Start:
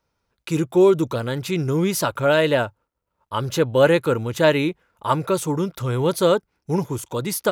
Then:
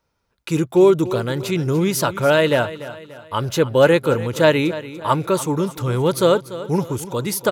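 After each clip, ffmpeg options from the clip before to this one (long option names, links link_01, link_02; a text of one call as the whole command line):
ffmpeg -i in.wav -af "aecho=1:1:291|582|873|1164:0.178|0.0782|0.0344|0.0151,volume=2dB" out.wav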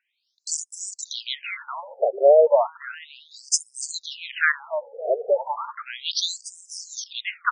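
ffmpeg -i in.wav -af "crystalizer=i=2.5:c=0,afftfilt=real='re*between(b*sr/1024,540*pow(7000/540,0.5+0.5*sin(2*PI*0.34*pts/sr))/1.41,540*pow(7000/540,0.5+0.5*sin(2*PI*0.34*pts/sr))*1.41)':imag='im*between(b*sr/1024,540*pow(7000/540,0.5+0.5*sin(2*PI*0.34*pts/sr))/1.41,540*pow(7000/540,0.5+0.5*sin(2*PI*0.34*pts/sr))*1.41)':win_size=1024:overlap=0.75,volume=3dB" out.wav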